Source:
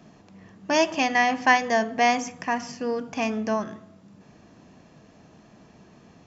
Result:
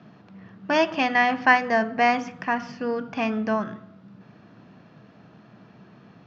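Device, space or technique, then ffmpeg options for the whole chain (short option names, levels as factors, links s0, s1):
guitar cabinet: -filter_complex "[0:a]asettb=1/sr,asplit=3[s0][s1][s2];[s0]atrim=end=1.454[s3];[s1]atrim=start=1.45:end=2.14,asetpts=PTS-STARTPTS,afade=t=in:d=0.004:c=qsin,afade=t=out:st=0.686:d=0.004:c=qsin,bandreject=f=3400:w=5.7[s4];[s2]atrim=start=2.136[s5];[s3][s4]acrossfade=d=0.004:c1=hsin:c2=qsin[s6];[s6][s5]acrossfade=d=0.004:c1=qsin:c2=hsin,highpass=110,equalizer=f=120:t=q:w=4:g=9,equalizer=f=190:t=q:w=4:g=4,equalizer=f=1400:t=q:w=4:g=8,lowpass=f=4400:w=0.5412,lowpass=f=4400:w=1.3066"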